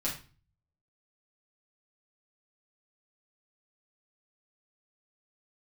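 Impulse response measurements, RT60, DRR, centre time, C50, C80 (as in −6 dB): 0.35 s, −7.0 dB, 27 ms, 7.0 dB, 13.0 dB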